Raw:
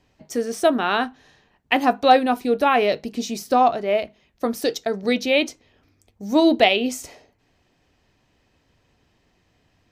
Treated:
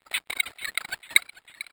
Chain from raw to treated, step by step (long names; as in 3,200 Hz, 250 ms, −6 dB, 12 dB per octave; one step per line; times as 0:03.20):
running median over 15 samples
parametric band 770 Hz +8.5 dB 0.23 octaves
tempo change 2×
low-pass filter 4,800 Hz 12 dB per octave
parametric band 2,500 Hz −13.5 dB 1.3 octaves
surface crackle 71 per second −37 dBFS
automatic gain control gain up to 5 dB
auto-filter high-pass saw up 2.7 Hz 760–3,600 Hz
noise gate −44 dBFS, range −9 dB
decimation without filtering 21×
change of speed 2.87×
feedback echo with a swinging delay time 446 ms, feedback 72%, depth 64 cents, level −18 dB
level −4 dB